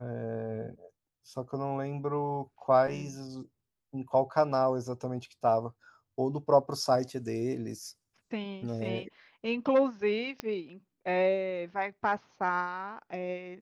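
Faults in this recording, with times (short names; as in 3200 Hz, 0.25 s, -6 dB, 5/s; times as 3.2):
10.4 pop -19 dBFS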